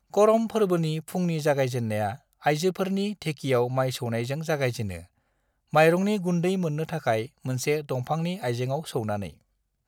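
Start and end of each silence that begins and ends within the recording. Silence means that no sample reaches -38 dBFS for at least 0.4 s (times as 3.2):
5.02–5.73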